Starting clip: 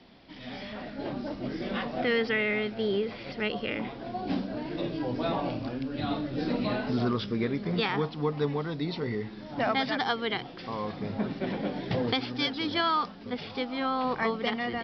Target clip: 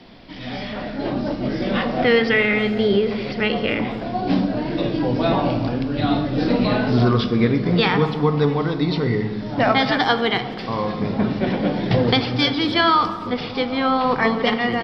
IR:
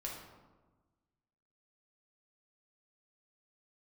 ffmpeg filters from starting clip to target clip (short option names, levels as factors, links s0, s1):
-filter_complex "[0:a]asplit=2[s0][s1];[s1]adelay=260,highpass=300,lowpass=3400,asoftclip=type=hard:threshold=0.0562,volume=0.0891[s2];[s0][s2]amix=inputs=2:normalize=0,asplit=2[s3][s4];[1:a]atrim=start_sample=2205,lowshelf=f=160:g=7.5[s5];[s4][s5]afir=irnorm=-1:irlink=0,volume=0.708[s6];[s3][s6]amix=inputs=2:normalize=0,volume=2.11"